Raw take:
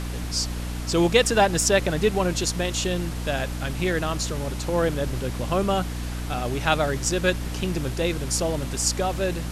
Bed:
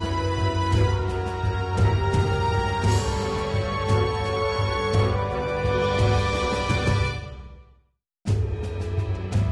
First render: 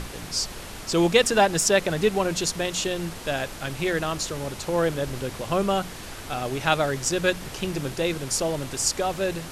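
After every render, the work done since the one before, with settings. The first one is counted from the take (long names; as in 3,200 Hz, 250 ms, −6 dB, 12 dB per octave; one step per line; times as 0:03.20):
mains-hum notches 60/120/180/240/300 Hz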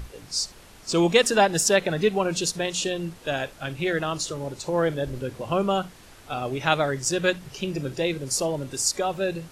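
noise reduction from a noise print 11 dB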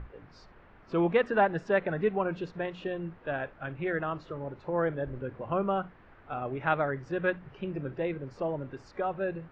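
transistor ladder low-pass 2,200 Hz, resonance 25%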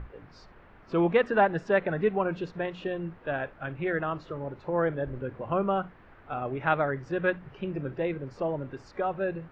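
level +2 dB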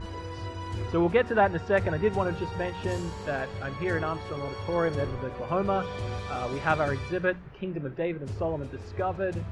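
mix in bed −13 dB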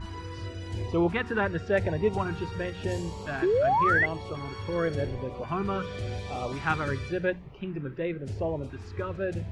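auto-filter notch saw up 0.92 Hz 470–1,800 Hz
0:03.42–0:04.06: sound drawn into the spectrogram rise 330–2,100 Hz −23 dBFS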